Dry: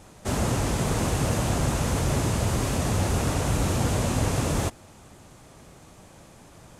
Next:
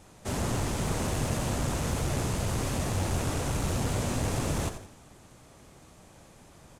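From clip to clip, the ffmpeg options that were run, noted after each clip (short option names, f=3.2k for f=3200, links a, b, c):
-filter_complex "[0:a]aeval=exprs='clip(val(0),-1,0.0794)':c=same,bandreject=f=53.84:t=h:w=4,bandreject=f=107.68:t=h:w=4,bandreject=f=161.52:t=h:w=4,bandreject=f=215.36:t=h:w=4,bandreject=f=269.2:t=h:w=4,bandreject=f=323.04:t=h:w=4,bandreject=f=376.88:t=h:w=4,bandreject=f=430.72:t=h:w=4,bandreject=f=484.56:t=h:w=4,bandreject=f=538.4:t=h:w=4,bandreject=f=592.24:t=h:w=4,bandreject=f=646.08:t=h:w=4,bandreject=f=699.92:t=h:w=4,bandreject=f=753.76:t=h:w=4,bandreject=f=807.6:t=h:w=4,bandreject=f=861.44:t=h:w=4,bandreject=f=915.28:t=h:w=4,bandreject=f=969.12:t=h:w=4,bandreject=f=1.02296k:t=h:w=4,bandreject=f=1.0768k:t=h:w=4,bandreject=f=1.13064k:t=h:w=4,bandreject=f=1.18448k:t=h:w=4,bandreject=f=1.23832k:t=h:w=4,bandreject=f=1.29216k:t=h:w=4,bandreject=f=1.346k:t=h:w=4,bandreject=f=1.39984k:t=h:w=4,bandreject=f=1.45368k:t=h:w=4,bandreject=f=1.50752k:t=h:w=4,bandreject=f=1.56136k:t=h:w=4,bandreject=f=1.6152k:t=h:w=4,bandreject=f=1.66904k:t=h:w=4,bandreject=f=1.72288k:t=h:w=4,asplit=5[a][b][c][d][e];[b]adelay=86,afreqshift=-91,volume=-10.5dB[f];[c]adelay=172,afreqshift=-182,volume=-18.5dB[g];[d]adelay=258,afreqshift=-273,volume=-26.4dB[h];[e]adelay=344,afreqshift=-364,volume=-34.4dB[i];[a][f][g][h][i]amix=inputs=5:normalize=0,volume=-4dB"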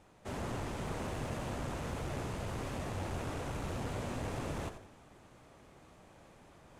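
-af "bass=f=250:g=-4,treble=f=4k:g=-10,areverse,acompressor=mode=upward:threshold=-45dB:ratio=2.5,areverse,volume=-6.5dB"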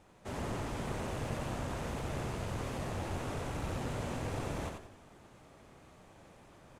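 -af "aecho=1:1:90:0.501"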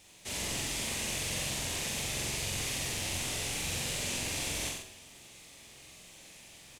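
-filter_complex "[0:a]aexciter=amount=6.6:drive=6.2:freq=2k,asplit=2[a][b];[b]adelay=45,volume=-2.5dB[c];[a][c]amix=inputs=2:normalize=0,volume=-5dB"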